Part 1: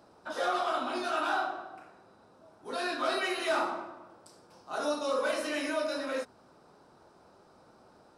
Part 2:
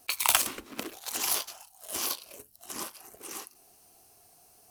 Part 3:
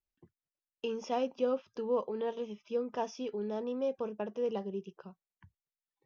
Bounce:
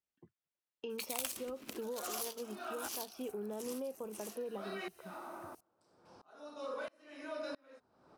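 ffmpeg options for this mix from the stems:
ffmpeg -i stem1.wav -i stem2.wav -i stem3.wav -filter_complex "[0:a]aeval=exprs='val(0)*pow(10,-33*if(lt(mod(-1.5*n/s,1),2*abs(-1.5)/1000),1-mod(-1.5*n/s,1)/(2*abs(-1.5)/1000),(mod(-1.5*n/s,1)-2*abs(-1.5)/1000)/(1-2*abs(-1.5)/1000))/20)':channel_layout=same,adelay=1550,volume=2dB[link_01];[1:a]equalizer=frequency=1100:width_type=o:width=1.9:gain=-6.5,adelay=900,volume=-7dB[link_02];[2:a]highpass=110,volume=0dB[link_03];[link_01][link_03]amix=inputs=2:normalize=0,lowpass=frequency=3800:poles=1,alimiter=level_in=6.5dB:limit=-24dB:level=0:latency=1:release=305,volume=-6.5dB,volume=0dB[link_04];[link_02][link_04]amix=inputs=2:normalize=0,acompressor=threshold=-40dB:ratio=2" out.wav

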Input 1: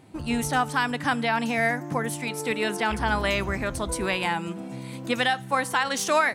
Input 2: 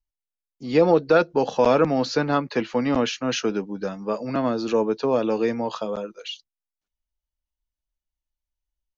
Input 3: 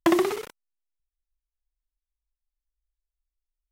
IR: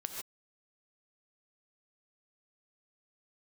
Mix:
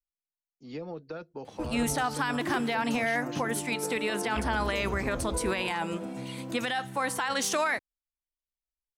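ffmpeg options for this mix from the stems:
-filter_complex "[0:a]equalizer=frequency=150:width_type=o:width=0.64:gain=-5.5,alimiter=limit=-19dB:level=0:latency=1:release=32,acontrast=49,adelay=1450,volume=-6dB[link_01];[1:a]acrossover=split=180[link_02][link_03];[link_03]acompressor=threshold=-24dB:ratio=4[link_04];[link_02][link_04]amix=inputs=2:normalize=0,volume=-14dB,asplit=2[link_05][link_06];[2:a]adelay=2350,volume=-6.5dB[link_07];[link_06]apad=whole_len=267361[link_08];[link_07][link_08]sidechaincompress=threshold=-52dB:ratio=8:attack=16:release=162[link_09];[link_01][link_05][link_09]amix=inputs=3:normalize=0"

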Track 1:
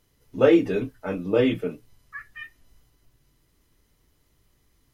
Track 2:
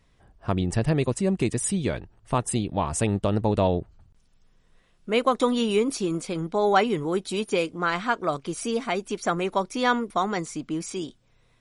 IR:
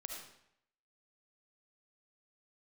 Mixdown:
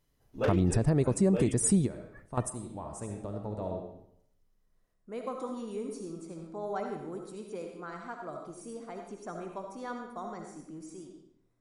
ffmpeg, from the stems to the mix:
-filter_complex "[0:a]flanger=delay=6.9:depth=3.6:regen=66:speed=0.74:shape=sinusoidal,aeval=exprs='0.188*(abs(mod(val(0)/0.188+3,4)-2)-1)':channel_layout=same,volume=-6.5dB,afade=type=out:start_time=1.48:duration=0.39:silence=0.375837,asplit=2[link_01][link_02];[1:a]equalizer=frequency=3000:width=1.1:gain=-14.5,volume=2.5dB,asplit=2[link_03][link_04];[link_04]volume=-14.5dB[link_05];[link_02]apad=whole_len=511951[link_06];[link_03][link_06]sidechaingate=range=-33dB:threshold=-59dB:ratio=16:detection=peak[link_07];[2:a]atrim=start_sample=2205[link_08];[link_05][link_08]afir=irnorm=-1:irlink=0[link_09];[link_01][link_07][link_09]amix=inputs=3:normalize=0,alimiter=limit=-15.5dB:level=0:latency=1:release=172"

